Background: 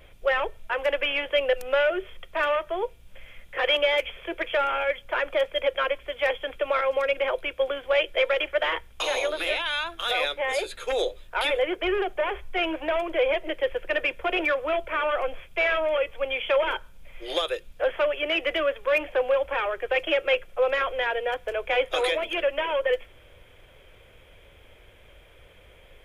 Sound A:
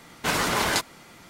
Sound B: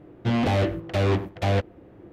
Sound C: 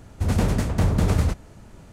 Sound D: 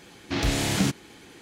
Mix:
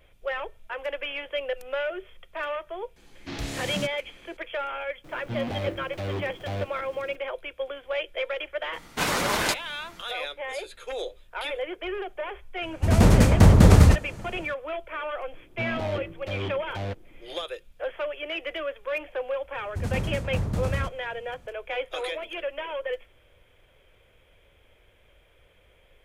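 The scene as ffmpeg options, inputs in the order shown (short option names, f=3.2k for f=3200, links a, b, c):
-filter_complex "[2:a]asplit=2[a][b];[3:a]asplit=2[c][d];[0:a]volume=-7dB[e];[a]aeval=exprs='val(0)+0.5*0.0158*sgn(val(0))':c=same[f];[c]dynaudnorm=f=140:g=5:m=11.5dB[g];[d]equalizer=f=120:t=o:w=0.77:g=3.5[h];[4:a]atrim=end=1.41,asetpts=PTS-STARTPTS,volume=-8.5dB,afade=t=in:d=0.004:c=hsin,afade=t=out:st=1.406:d=0.004:c=hsin,adelay=2960[i];[f]atrim=end=2.12,asetpts=PTS-STARTPTS,volume=-10dB,afade=t=in:d=0.004:c=hsin,afade=t=out:st=2.116:d=0.004:c=hsin,adelay=5040[j];[1:a]atrim=end=1.29,asetpts=PTS-STARTPTS,volume=-1.5dB,afade=t=in:d=0.004:c=hsin,afade=t=out:st=1.286:d=0.004:c=hsin,adelay=8730[k];[g]atrim=end=1.92,asetpts=PTS-STARTPTS,volume=-2dB,afade=t=in:d=0.004:c=hsin,afade=t=out:st=1.916:d=0.004:c=hsin,adelay=12620[l];[b]atrim=end=2.12,asetpts=PTS-STARTPTS,volume=-10dB,afade=t=in:d=0.004:c=hsin,afade=t=out:st=2.116:d=0.004:c=hsin,adelay=15330[m];[h]atrim=end=1.92,asetpts=PTS-STARTPTS,volume=-9dB,afade=t=in:d=0.004:c=hsin,afade=t=out:st=1.916:d=0.004:c=hsin,adelay=19550[n];[e][i][j][k][l][m][n]amix=inputs=7:normalize=0"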